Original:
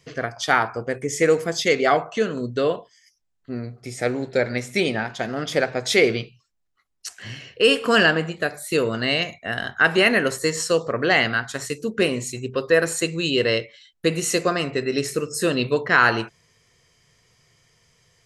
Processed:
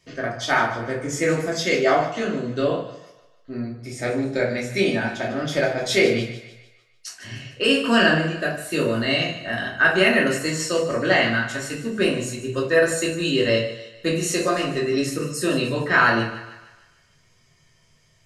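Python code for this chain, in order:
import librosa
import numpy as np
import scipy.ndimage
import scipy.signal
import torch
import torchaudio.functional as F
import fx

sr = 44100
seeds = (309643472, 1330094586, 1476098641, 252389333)

p1 = x + fx.echo_thinned(x, sr, ms=150, feedback_pct=49, hz=420.0, wet_db=-13.0, dry=0)
p2 = fx.room_shoebox(p1, sr, seeds[0], volume_m3=340.0, walls='furnished', distance_m=2.7)
y = p2 * librosa.db_to_amplitude(-5.0)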